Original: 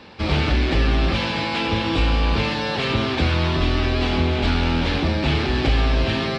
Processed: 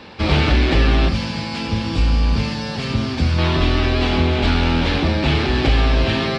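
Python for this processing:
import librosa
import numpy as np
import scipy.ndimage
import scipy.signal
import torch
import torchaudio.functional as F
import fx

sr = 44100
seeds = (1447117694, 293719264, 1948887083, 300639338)

y = fx.rider(x, sr, range_db=10, speed_s=2.0)
y = fx.spec_box(y, sr, start_s=1.09, length_s=2.3, low_hz=270.0, high_hz=4300.0, gain_db=-8)
y = y * librosa.db_to_amplitude(3.0)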